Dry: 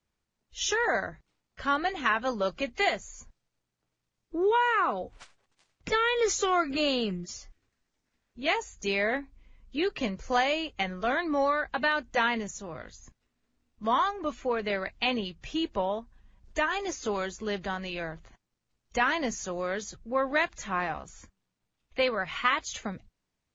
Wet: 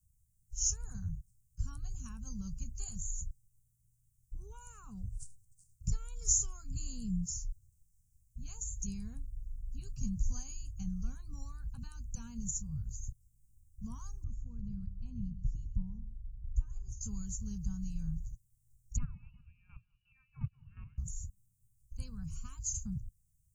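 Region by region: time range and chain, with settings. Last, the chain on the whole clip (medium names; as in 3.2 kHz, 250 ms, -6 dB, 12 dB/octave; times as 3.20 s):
14.24–17.01 s: FFT filter 200 Hz 0 dB, 420 Hz -8 dB, 1.4 kHz -13 dB, 5.2 kHz -18 dB + delay 134 ms -13.5 dB
18.98–20.98 s: feedback delay 184 ms, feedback 45%, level -17 dB + square tremolo 2.8 Hz, depth 65%, duty 20% + frequency inversion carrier 2.9 kHz
whole clip: inverse Chebyshev band-stop 310–3800 Hz, stop band 50 dB; peaking EQ 1.8 kHz +4 dB 2.7 oct; trim +14.5 dB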